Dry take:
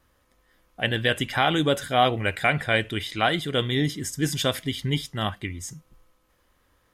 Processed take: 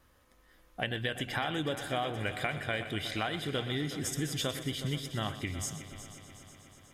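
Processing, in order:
downward compressor, threshold −31 dBFS, peak gain reduction 15.5 dB
on a send: echo machine with several playback heads 122 ms, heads first and third, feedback 70%, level −14 dB

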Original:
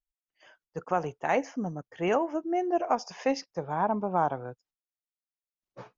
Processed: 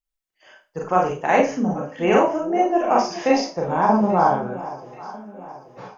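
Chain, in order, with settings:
on a send: delay that swaps between a low-pass and a high-pass 416 ms, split 830 Hz, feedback 65%, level −13.5 dB
on the sum: four-comb reverb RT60 0.31 s, combs from 29 ms, DRR −2.5 dB
automatic gain control gain up to 6 dB

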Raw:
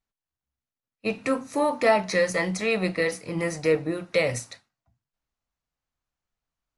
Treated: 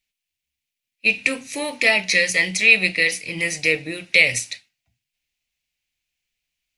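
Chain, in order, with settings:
high shelf with overshoot 1,700 Hz +12 dB, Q 3
level −2.5 dB

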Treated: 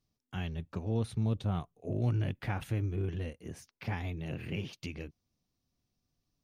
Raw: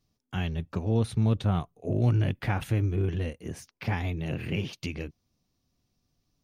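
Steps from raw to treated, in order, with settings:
0:01.08–0:01.51: dynamic equaliser 1,700 Hz, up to −5 dB, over −49 dBFS, Q 1.2
level −6.5 dB

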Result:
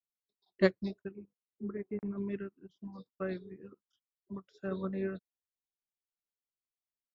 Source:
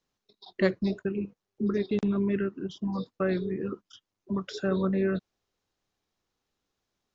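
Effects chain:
0:01.11–0:02.18: elliptic low-pass filter 2,200 Hz, stop band 40 dB
expander for the loud parts 2.5 to 1, over −38 dBFS

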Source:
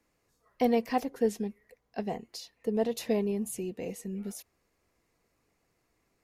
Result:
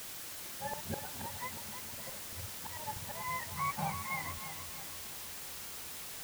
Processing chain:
frequency axis turned over on the octave scale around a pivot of 640 Hz
parametric band 1,700 Hz −11.5 dB 0.77 octaves
volume swells 473 ms
background noise white −51 dBFS
on a send: feedback echo with a low-pass in the loop 317 ms, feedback 54%, level −8 dB
on the sum: level +6 dB

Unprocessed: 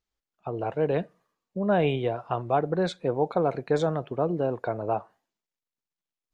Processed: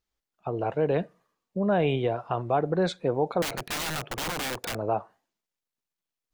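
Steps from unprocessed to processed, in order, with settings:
in parallel at +2 dB: brickwall limiter −19 dBFS, peak gain reduction 7.5 dB
0:03.42–0:04.75: on the sum: wrap-around overflow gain 20.5 dB
level −5.5 dB

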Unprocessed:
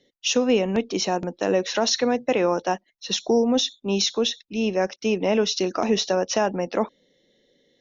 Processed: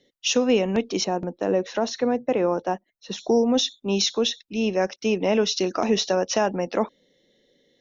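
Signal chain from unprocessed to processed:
0:01.04–0:03.19: parametric band 4,900 Hz −11 dB 2.9 octaves

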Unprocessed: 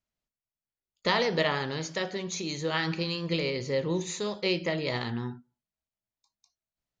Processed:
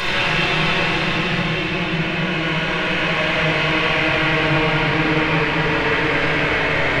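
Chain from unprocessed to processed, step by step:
in parallel at −0.5 dB: brickwall limiter −24.5 dBFS, peak gain reduction 11.5 dB
on the sum: wrap-around overflow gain 21.5 dB
low-pass filter sweep 4,000 Hz → 1,400 Hz, 0:03.70–0:06.02
extreme stretch with random phases 18×, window 0.25 s, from 0:04.51
rectangular room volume 3,900 cubic metres, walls mixed, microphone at 5.1 metres

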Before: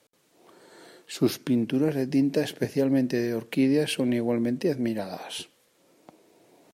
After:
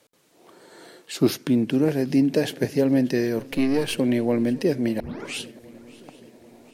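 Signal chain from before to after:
0:03.39–0:03.98: gain on one half-wave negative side −7 dB
0:05.00: tape start 0.40 s
feedback echo with a long and a short gap by turns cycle 783 ms, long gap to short 3 to 1, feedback 50%, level −22 dB
level +3.5 dB

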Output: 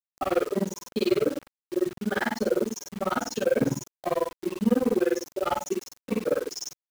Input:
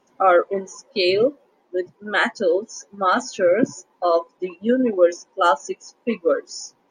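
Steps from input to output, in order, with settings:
soft clipping −18 dBFS, distortion −10 dB
high-pass filter 51 Hz 6 dB per octave
double-tracking delay 14 ms −4 dB
brickwall limiter −21.5 dBFS, peak gain reduction 9 dB
low-shelf EQ 370 Hz +10.5 dB
ambience of single reflections 37 ms −3 dB, 73 ms −4.5 dB
granular cloud 49 ms, grains 20 per second, spray 21 ms, pitch spread up and down by 0 semitones
high-shelf EQ 3,400 Hz −3 dB
bit reduction 7 bits

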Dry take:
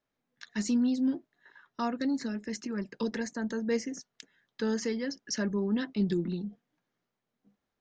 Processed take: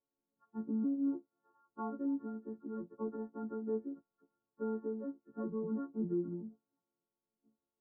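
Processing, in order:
every partial snapped to a pitch grid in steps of 4 semitones
Chebyshev low-pass with heavy ripple 1,400 Hz, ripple 9 dB
low-pass that shuts in the quiet parts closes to 980 Hz, open at −30 dBFS
level −3 dB

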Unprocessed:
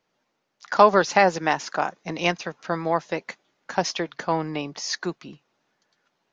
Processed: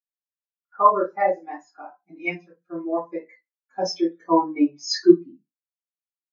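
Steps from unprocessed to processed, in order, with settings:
parametric band 6,400 Hz −5.5 dB 1.6 octaves, from 0:01.19 +5.5 dB
automatic gain control gain up to 15.5 dB
convolution reverb RT60 0.50 s, pre-delay 3 ms, DRR −16.5 dB
every bin expanded away from the loudest bin 2.5 to 1
level −13.5 dB

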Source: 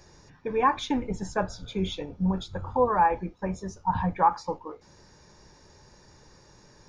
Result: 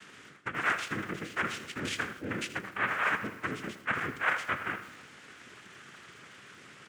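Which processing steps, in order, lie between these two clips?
cochlear-implant simulation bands 3
reversed playback
downward compressor 6 to 1, threshold −35 dBFS, peak gain reduction 18.5 dB
reversed playback
flat-topped bell 2,000 Hz +10 dB
repeating echo 121 ms, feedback 57%, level −18.5 dB
on a send at −18.5 dB: convolution reverb RT60 2.1 s, pre-delay 4 ms
on the sum: feedback echo at a low word length 80 ms, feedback 35%, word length 8 bits, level −12 dB

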